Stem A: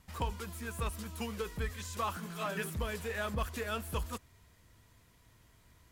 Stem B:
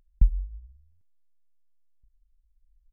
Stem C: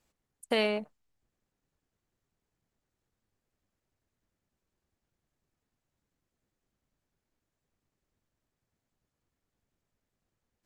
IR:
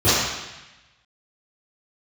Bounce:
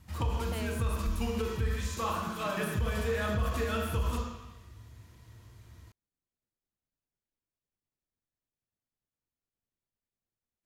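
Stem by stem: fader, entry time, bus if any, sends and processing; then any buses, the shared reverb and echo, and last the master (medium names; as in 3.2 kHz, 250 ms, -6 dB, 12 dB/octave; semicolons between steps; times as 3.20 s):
0.0 dB, 0.00 s, send -21 dB, band-stop 400 Hz, Q 12
-0.5 dB, 0.85 s, no send, tone controls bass -5 dB, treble +14 dB; peak limiter -22 dBFS, peak gain reduction 8.5 dB
-13.0 dB, 0.00 s, no send, none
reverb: on, RT60 1.0 s, pre-delay 3 ms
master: peak limiter -22 dBFS, peak gain reduction 8 dB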